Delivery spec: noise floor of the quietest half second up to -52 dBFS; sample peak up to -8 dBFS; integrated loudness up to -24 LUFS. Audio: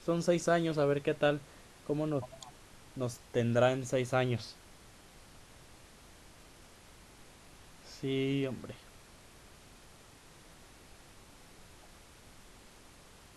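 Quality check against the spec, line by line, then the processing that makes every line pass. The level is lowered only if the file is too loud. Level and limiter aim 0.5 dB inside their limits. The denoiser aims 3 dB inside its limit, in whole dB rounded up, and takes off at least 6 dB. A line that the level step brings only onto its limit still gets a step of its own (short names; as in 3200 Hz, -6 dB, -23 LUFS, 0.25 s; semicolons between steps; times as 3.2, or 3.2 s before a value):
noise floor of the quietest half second -57 dBFS: OK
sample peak -14.5 dBFS: OK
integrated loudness -32.5 LUFS: OK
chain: none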